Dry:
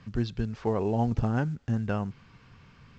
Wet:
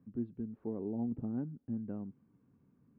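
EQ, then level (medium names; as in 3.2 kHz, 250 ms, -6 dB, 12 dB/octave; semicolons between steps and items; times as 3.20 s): band-pass filter 270 Hz, Q 2.4; distance through air 440 m; -3.5 dB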